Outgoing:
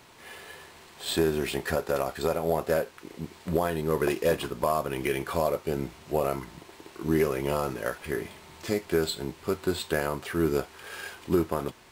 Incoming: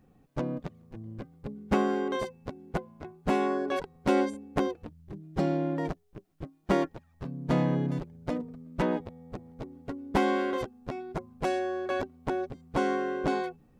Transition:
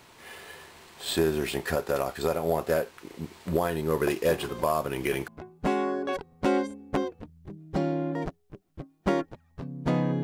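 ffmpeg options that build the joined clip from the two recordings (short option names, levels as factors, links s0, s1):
-filter_complex "[1:a]asplit=2[s0][s1];[0:a]apad=whole_dur=10.23,atrim=end=10.23,atrim=end=5.282[s2];[s1]atrim=start=2.908:end=7.86[s3];[s0]atrim=start=1.91:end=2.91,asetpts=PTS-STARTPTS,volume=0.299,afade=t=in:d=0.004:c=hsin,afade=t=out:st=0.996:d=0.004:c=hsin,adelay=4280[s4];[s2][s3]acrossfade=d=0.004:c1=hsin:c2=hsin[s5];[s5][s4]amix=inputs=2:normalize=0"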